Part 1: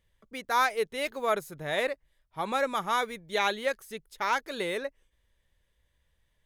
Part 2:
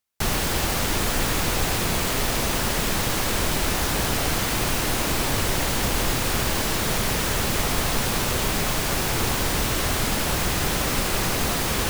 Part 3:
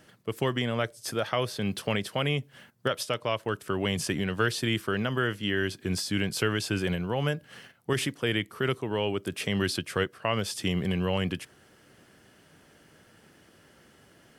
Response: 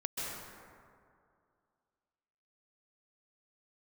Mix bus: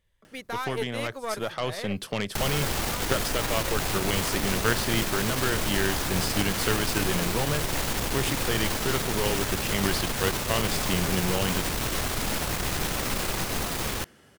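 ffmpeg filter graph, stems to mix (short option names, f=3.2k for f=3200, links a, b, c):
-filter_complex "[0:a]volume=-0.5dB,afade=t=out:st=0.88:d=0.57:silence=0.237137[a];[1:a]adelay=2150,volume=-6dB[b];[2:a]acompressor=mode=upward:threshold=-45dB:ratio=2.5,adelay=250,volume=-5.5dB[c];[a][b]amix=inputs=2:normalize=0,alimiter=limit=-24dB:level=0:latency=1:release=66,volume=0dB[d];[c][d]amix=inputs=2:normalize=0,dynaudnorm=f=530:g=5:m=5dB,aeval=exprs='0.282*(cos(1*acos(clip(val(0)/0.282,-1,1)))-cos(1*PI/2))+0.126*(cos(2*acos(clip(val(0)/0.282,-1,1)))-cos(2*PI/2))+0.0282*(cos(8*acos(clip(val(0)/0.282,-1,1)))-cos(8*PI/2))':c=same"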